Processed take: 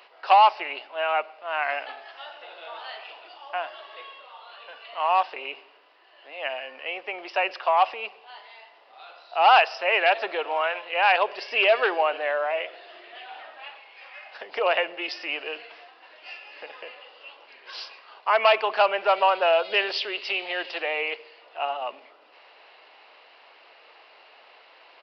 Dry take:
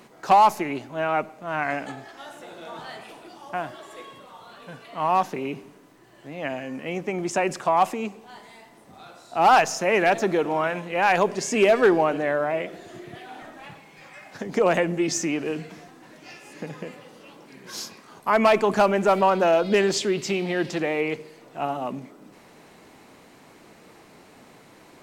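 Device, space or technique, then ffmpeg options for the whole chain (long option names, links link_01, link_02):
musical greeting card: -af "aresample=11025,aresample=44100,highpass=frequency=550:width=0.5412,highpass=frequency=550:width=1.3066,equalizer=frequency=2800:width_type=o:width=0.26:gain=10"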